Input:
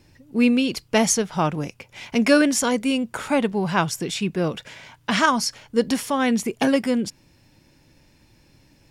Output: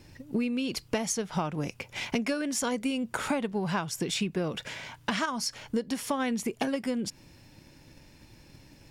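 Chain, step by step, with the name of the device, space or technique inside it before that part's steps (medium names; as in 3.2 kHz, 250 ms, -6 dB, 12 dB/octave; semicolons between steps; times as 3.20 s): drum-bus smash (transient shaper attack +5 dB, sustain +1 dB; compression 16:1, threshold -27 dBFS, peak gain reduction 19.5 dB; saturation -17.5 dBFS, distortion -25 dB); trim +1.5 dB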